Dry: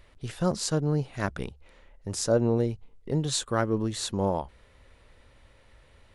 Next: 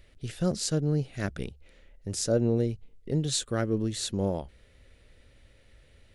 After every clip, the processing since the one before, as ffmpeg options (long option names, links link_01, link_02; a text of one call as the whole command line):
ffmpeg -i in.wav -af "equalizer=frequency=990:width=1.7:gain=-13" out.wav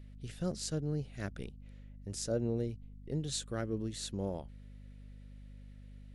ffmpeg -i in.wav -af "aeval=exprs='val(0)+0.00891*(sin(2*PI*50*n/s)+sin(2*PI*2*50*n/s)/2+sin(2*PI*3*50*n/s)/3+sin(2*PI*4*50*n/s)/4+sin(2*PI*5*50*n/s)/5)':channel_layout=same,volume=-8.5dB" out.wav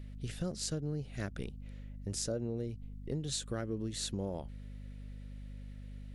ffmpeg -i in.wav -af "acompressor=threshold=-38dB:ratio=5,volume=5dB" out.wav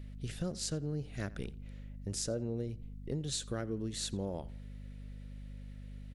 ffmpeg -i in.wav -filter_complex "[0:a]asplit=2[link_01][link_02];[link_02]adelay=86,lowpass=frequency=3700:poles=1,volume=-19.5dB,asplit=2[link_03][link_04];[link_04]adelay=86,lowpass=frequency=3700:poles=1,volume=0.32,asplit=2[link_05][link_06];[link_06]adelay=86,lowpass=frequency=3700:poles=1,volume=0.32[link_07];[link_01][link_03][link_05][link_07]amix=inputs=4:normalize=0" out.wav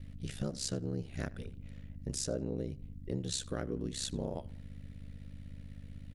ffmpeg -i in.wav -af "aeval=exprs='val(0)*sin(2*PI*33*n/s)':channel_layout=same,volume=3dB" out.wav